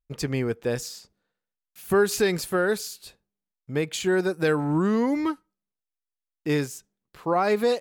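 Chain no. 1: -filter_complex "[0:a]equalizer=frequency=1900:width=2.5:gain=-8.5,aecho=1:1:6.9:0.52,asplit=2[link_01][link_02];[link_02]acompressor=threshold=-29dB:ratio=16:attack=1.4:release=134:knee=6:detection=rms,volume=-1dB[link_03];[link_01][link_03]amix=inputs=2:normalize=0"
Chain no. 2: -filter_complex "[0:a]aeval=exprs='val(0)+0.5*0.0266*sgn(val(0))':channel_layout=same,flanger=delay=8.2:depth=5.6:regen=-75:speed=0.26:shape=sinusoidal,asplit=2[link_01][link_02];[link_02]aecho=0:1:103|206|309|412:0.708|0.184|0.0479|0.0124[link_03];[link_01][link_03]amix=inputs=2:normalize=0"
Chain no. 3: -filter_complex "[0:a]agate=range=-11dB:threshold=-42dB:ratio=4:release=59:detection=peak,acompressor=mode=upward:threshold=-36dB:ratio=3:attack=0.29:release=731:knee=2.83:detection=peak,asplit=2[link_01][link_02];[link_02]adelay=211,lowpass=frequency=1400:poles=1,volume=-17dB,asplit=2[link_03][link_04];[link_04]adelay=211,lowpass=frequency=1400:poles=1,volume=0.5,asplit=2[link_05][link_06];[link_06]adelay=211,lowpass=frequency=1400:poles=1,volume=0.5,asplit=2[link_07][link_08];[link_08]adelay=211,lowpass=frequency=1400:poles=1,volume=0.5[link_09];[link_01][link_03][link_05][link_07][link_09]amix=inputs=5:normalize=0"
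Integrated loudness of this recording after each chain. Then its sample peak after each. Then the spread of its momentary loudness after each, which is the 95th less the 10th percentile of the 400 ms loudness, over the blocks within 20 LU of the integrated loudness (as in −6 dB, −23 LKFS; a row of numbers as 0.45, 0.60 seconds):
−23.0, −27.0, −25.5 LKFS; −8.5, −13.5, −12.0 dBFS; 13, 15, 14 LU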